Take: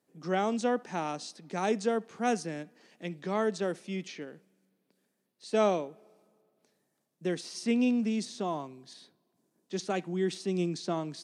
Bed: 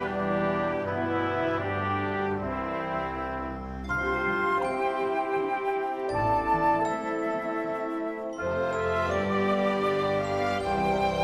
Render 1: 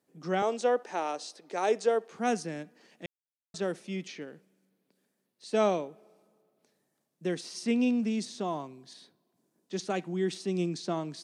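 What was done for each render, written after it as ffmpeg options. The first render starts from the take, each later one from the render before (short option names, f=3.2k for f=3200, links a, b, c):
-filter_complex "[0:a]asettb=1/sr,asplit=3[a][b][c];[a]atrim=end=0.424[d];[b]atrim=start=0.42:end=2.12,asetpts=PTS-STARTPTS,afade=t=in:d=0.004:c=qsin,afade=t=out:st=1.696:d=0.004:c=qsin,highpass=f=440:t=q:w=1.5[e];[c]atrim=start=2.116[f];[d][e]acrossfade=d=0.004:c1=hsin:c2=qsin[g];[g][f]acrossfade=d=0.004:c1=qsin:c2=hsin,asplit=3[h][i][j];[h]atrim=end=3.06,asetpts=PTS-STARTPTS,afade=t=out:st=3.056:d=0.004:c=hsin[k];[i]atrim=start=3.06:end=3.54,asetpts=PTS-STARTPTS,volume=0[l];[j]atrim=start=3.54,asetpts=PTS-STARTPTS,afade=t=in:d=0.004:c=hsin[m];[k][l][m]concat=n=3:v=0:a=1"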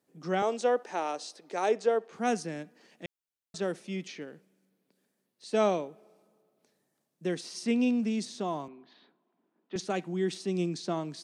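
-filter_complex "[0:a]asettb=1/sr,asplit=3[a][b][c];[a]atrim=end=1.684[d];[b]atrim=start=1.68:end=2.13,asetpts=PTS-STARTPTS,afade=t=in:d=0.004:c=qsin,afade=t=out:st=0.446:d=0.004:c=qsin,lowpass=f=3.9k:p=1[e];[c]atrim=start=2.126[f];[d][e]acrossfade=d=0.004:c1=hsin:c2=qsin[g];[g][f]acrossfade=d=0.004:c1=qsin:c2=hsin,asettb=1/sr,asplit=3[h][i][j];[h]atrim=end=8.684[k];[i]atrim=start=8.68:end=9.76,asetpts=PTS-STARTPTS,afade=t=in:d=0.004:c=qsin,afade=t=out:st=1.076:d=0.004:c=qsin,highpass=f=200:w=0.5412,highpass=f=200:w=1.3066,equalizer=f=530:t=q:w=4:g=-3,equalizer=f=870:t=q:w=4:g=4,equalizer=f=1.3k:t=q:w=4:g=5,lowpass=f=3.1k:w=0.5412,lowpass=f=3.1k:w=1.3066[l];[j]atrim=start=9.756[m];[k][l]acrossfade=d=0.004:c1=hsin:c2=qsin[n];[n][m]acrossfade=d=0.004:c1=qsin:c2=hsin"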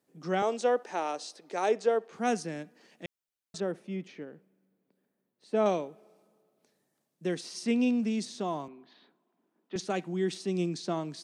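-filter_complex "[0:a]asettb=1/sr,asplit=3[a][b][c];[a]atrim=end=3.604[d];[b]atrim=start=3.6:end=5.66,asetpts=PTS-STARTPTS,afade=t=in:d=0.004:c=qsin,afade=t=out:st=2.056:d=0.004:c=qsin,equalizer=f=6.5k:t=o:w=2.6:g=-13.5[e];[c]atrim=start=5.656[f];[d][e]acrossfade=d=0.004:c1=hsin:c2=qsin[g];[g][f]acrossfade=d=0.004:c1=qsin:c2=hsin"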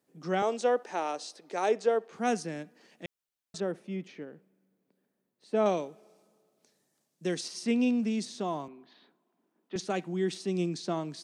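-filter_complex "[0:a]asettb=1/sr,asplit=3[a][b][c];[a]atrim=end=5.774[d];[b]atrim=start=5.77:end=7.48,asetpts=PTS-STARTPTS,afade=t=in:d=0.004:c=qsin,afade=t=out:st=1.706:d=0.004:c=qsin,equalizer=f=6.4k:t=o:w=1.6:g=7[e];[c]atrim=start=7.476[f];[d][e]acrossfade=d=0.004:c1=hsin:c2=qsin[g];[g][f]acrossfade=d=0.004:c1=qsin:c2=hsin"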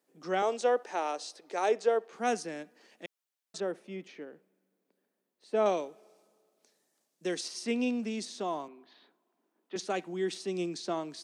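-af "highpass=290"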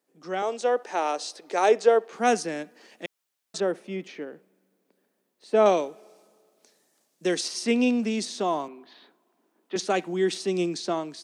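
-af "dynaudnorm=f=350:g=5:m=8dB"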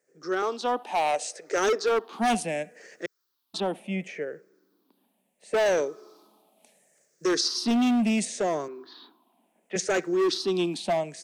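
-filter_complex "[0:a]afftfilt=real='re*pow(10,14/40*sin(2*PI*(0.53*log(max(b,1)*sr/1024/100)/log(2)-(-0.71)*(pts-256)/sr)))':imag='im*pow(10,14/40*sin(2*PI*(0.53*log(max(b,1)*sr/1024/100)/log(2)-(-0.71)*(pts-256)/sr)))':win_size=1024:overlap=0.75,acrossover=split=4500[a][b];[a]asoftclip=type=hard:threshold=-20.5dB[c];[c][b]amix=inputs=2:normalize=0"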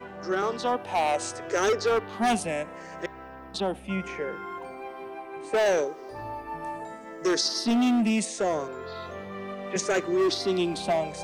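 -filter_complex "[1:a]volume=-11.5dB[a];[0:a][a]amix=inputs=2:normalize=0"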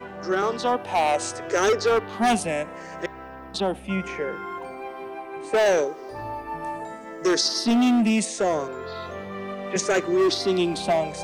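-af "volume=3.5dB"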